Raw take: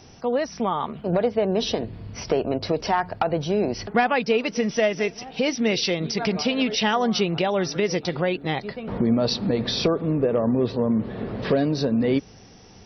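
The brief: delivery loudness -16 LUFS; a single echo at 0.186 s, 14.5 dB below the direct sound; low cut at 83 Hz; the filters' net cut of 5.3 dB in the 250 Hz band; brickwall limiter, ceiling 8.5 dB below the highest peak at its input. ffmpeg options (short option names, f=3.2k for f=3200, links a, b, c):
-af "highpass=83,equalizer=f=250:t=o:g=-6.5,alimiter=limit=-17dB:level=0:latency=1,aecho=1:1:186:0.188,volume=11.5dB"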